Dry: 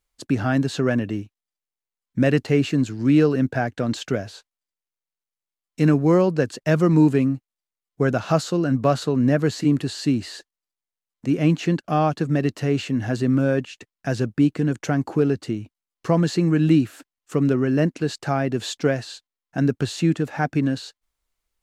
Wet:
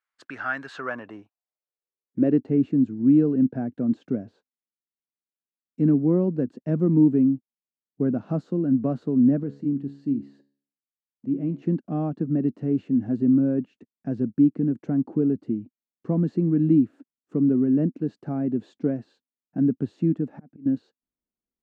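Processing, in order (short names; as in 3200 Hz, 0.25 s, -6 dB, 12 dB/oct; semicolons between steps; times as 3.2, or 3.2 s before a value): 9.43–11.62 resonator 70 Hz, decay 0.48 s, harmonics all, mix 60%; 20.21–20.66 auto swell 0.704 s; band-pass sweep 1500 Hz -> 240 Hz, 0.63–2.54; gain +3 dB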